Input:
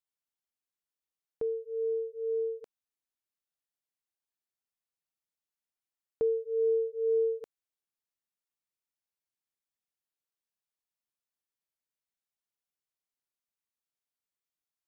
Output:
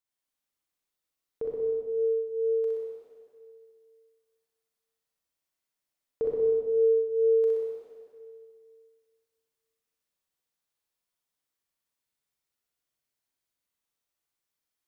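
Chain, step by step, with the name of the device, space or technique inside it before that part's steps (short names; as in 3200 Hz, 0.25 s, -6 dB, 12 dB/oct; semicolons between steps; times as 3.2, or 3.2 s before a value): tunnel (flutter echo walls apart 10.7 m, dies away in 0.8 s; reverb RT60 2.1 s, pre-delay 30 ms, DRR -2.5 dB)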